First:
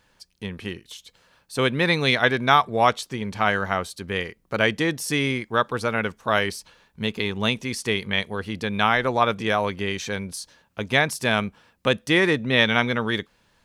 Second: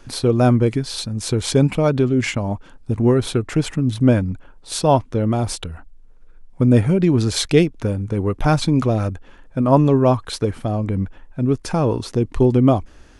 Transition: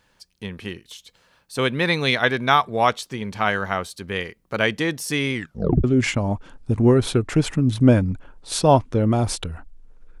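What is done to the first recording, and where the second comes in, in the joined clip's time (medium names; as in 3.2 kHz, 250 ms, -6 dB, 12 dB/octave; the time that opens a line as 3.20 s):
first
5.34 s: tape stop 0.50 s
5.84 s: go over to second from 2.04 s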